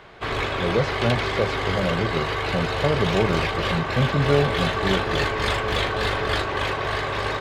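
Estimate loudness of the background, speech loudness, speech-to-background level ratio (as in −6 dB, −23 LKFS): −24.5 LKFS, −26.0 LKFS, −1.5 dB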